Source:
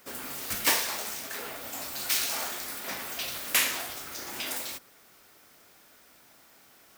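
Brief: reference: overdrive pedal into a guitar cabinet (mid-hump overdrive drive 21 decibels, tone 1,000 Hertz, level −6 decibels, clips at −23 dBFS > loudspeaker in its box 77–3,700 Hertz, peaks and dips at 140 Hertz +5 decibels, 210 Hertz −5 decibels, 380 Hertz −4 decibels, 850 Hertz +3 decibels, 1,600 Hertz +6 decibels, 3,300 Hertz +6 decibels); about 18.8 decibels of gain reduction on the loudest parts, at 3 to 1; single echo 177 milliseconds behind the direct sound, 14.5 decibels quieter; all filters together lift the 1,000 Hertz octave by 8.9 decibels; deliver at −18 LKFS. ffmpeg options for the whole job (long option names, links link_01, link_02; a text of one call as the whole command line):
ffmpeg -i in.wav -filter_complex "[0:a]equalizer=frequency=1000:width_type=o:gain=8.5,acompressor=threshold=-45dB:ratio=3,aecho=1:1:177:0.188,asplit=2[link_01][link_02];[link_02]highpass=frequency=720:poles=1,volume=21dB,asoftclip=type=tanh:threshold=-23dB[link_03];[link_01][link_03]amix=inputs=2:normalize=0,lowpass=frequency=1000:poles=1,volume=-6dB,highpass=77,equalizer=frequency=140:width_type=q:width=4:gain=5,equalizer=frequency=210:width_type=q:width=4:gain=-5,equalizer=frequency=380:width_type=q:width=4:gain=-4,equalizer=frequency=850:width_type=q:width=4:gain=3,equalizer=frequency=1600:width_type=q:width=4:gain=6,equalizer=frequency=3300:width_type=q:width=4:gain=6,lowpass=frequency=3700:width=0.5412,lowpass=frequency=3700:width=1.3066,volume=20.5dB" out.wav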